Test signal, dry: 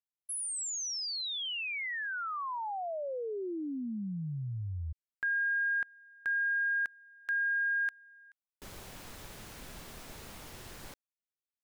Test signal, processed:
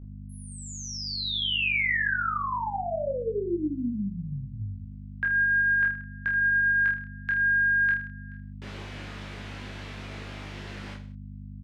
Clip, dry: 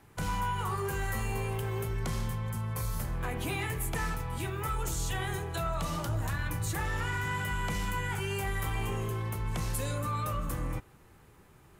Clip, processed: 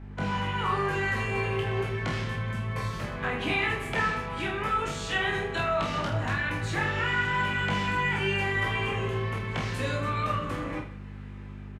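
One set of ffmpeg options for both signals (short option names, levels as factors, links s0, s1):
-filter_complex "[0:a]highpass=180,lowpass=2400,acrossover=split=670|1700[s0][s1][s2];[s1]flanger=delay=4.5:depth=9.7:regen=-54:speed=0.2:shape=sinusoidal[s3];[s2]dynaudnorm=f=140:g=5:m=2.24[s4];[s0][s3][s4]amix=inputs=3:normalize=0,aeval=exprs='val(0)+0.00398*(sin(2*PI*50*n/s)+sin(2*PI*2*50*n/s)/2+sin(2*PI*3*50*n/s)/3+sin(2*PI*4*50*n/s)/4+sin(2*PI*5*50*n/s)/5)':c=same,asplit=2[s5][s6];[s6]adelay=29,volume=0.501[s7];[s5][s7]amix=inputs=2:normalize=0,aecho=1:1:20|46|79.8|123.7|180.9:0.631|0.398|0.251|0.158|0.1,acontrast=25"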